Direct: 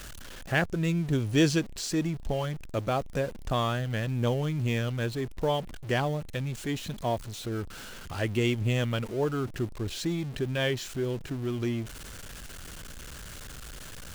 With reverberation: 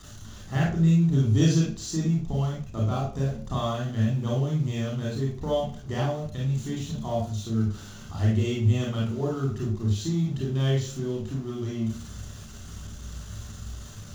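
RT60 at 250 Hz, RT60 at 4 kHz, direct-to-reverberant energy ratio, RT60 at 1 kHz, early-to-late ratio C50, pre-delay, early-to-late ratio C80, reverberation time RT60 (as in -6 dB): 0.50 s, 0.40 s, -3.0 dB, 0.40 s, 2.0 dB, 29 ms, 9.0 dB, 0.45 s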